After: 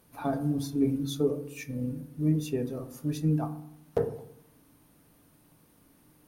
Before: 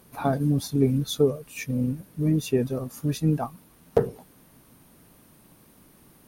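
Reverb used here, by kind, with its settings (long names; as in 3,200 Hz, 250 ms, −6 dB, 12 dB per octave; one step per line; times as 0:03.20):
feedback delay network reverb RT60 0.73 s, low-frequency decay 1.25×, high-frequency decay 0.35×, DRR 6.5 dB
level −7.5 dB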